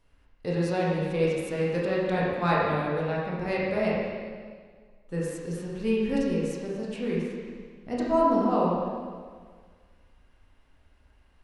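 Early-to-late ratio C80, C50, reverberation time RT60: 0.5 dB, -1.5 dB, 1.7 s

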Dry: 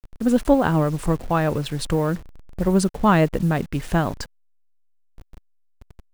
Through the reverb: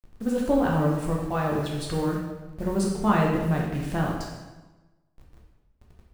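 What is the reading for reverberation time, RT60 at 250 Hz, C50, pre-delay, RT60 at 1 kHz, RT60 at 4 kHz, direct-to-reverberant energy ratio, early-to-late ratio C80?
1.2 s, 1.3 s, 2.0 dB, 8 ms, 1.1 s, 0.95 s, -2.5 dB, 4.5 dB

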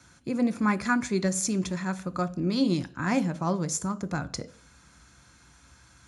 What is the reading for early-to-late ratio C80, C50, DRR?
23.5 dB, 20.0 dB, 11.5 dB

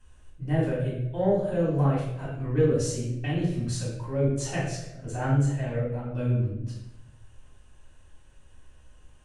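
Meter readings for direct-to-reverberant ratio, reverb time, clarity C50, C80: -8.0 dB, 0.90 s, 2.0 dB, 5.0 dB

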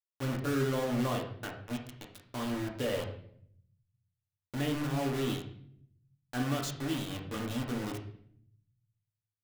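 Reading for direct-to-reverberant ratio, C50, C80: 0.0 dB, 7.0 dB, 11.0 dB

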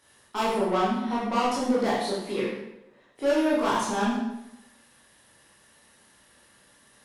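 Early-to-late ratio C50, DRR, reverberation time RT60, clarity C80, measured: 0.5 dB, -7.5 dB, 0.90 s, 3.0 dB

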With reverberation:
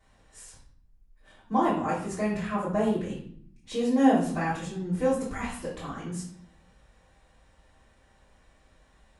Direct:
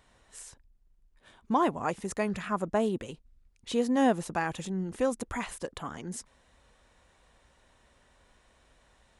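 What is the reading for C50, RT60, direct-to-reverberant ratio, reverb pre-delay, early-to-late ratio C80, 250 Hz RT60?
4.0 dB, 0.60 s, -13.0 dB, 3 ms, 8.5 dB, 0.95 s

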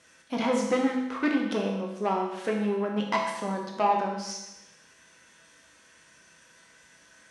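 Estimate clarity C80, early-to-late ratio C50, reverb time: 5.5 dB, 3.5 dB, 0.95 s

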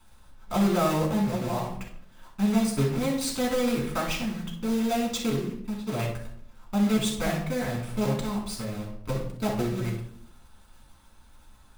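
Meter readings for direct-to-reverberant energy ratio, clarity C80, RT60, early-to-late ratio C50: -3.0 dB, 9.0 dB, 0.65 s, 5.0 dB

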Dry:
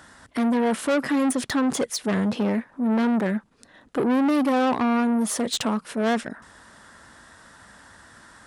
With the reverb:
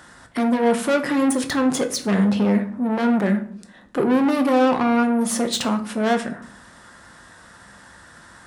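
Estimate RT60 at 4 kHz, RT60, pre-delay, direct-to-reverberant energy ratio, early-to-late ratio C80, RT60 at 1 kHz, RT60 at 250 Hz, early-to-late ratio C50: 0.35 s, 0.60 s, 6 ms, 5.5 dB, 17.0 dB, 0.55 s, 0.95 s, 13.0 dB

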